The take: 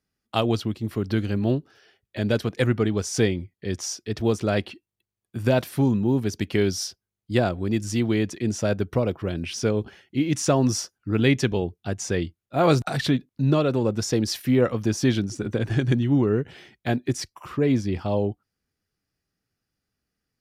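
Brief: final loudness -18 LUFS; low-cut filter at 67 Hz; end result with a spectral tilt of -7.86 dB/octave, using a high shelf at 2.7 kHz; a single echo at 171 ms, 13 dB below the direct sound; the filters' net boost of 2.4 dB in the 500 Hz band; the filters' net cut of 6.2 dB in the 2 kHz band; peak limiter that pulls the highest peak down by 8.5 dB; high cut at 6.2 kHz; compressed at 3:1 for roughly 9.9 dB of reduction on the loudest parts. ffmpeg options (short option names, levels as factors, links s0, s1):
-af "highpass=67,lowpass=6200,equalizer=f=500:t=o:g=3.5,equalizer=f=2000:t=o:g=-5,highshelf=f=2700:g=-7.5,acompressor=threshold=0.0447:ratio=3,alimiter=limit=0.0891:level=0:latency=1,aecho=1:1:171:0.224,volume=5.62"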